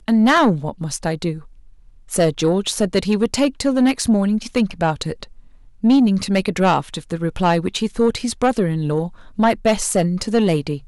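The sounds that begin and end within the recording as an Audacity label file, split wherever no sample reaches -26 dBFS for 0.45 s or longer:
2.120000	5.230000	sound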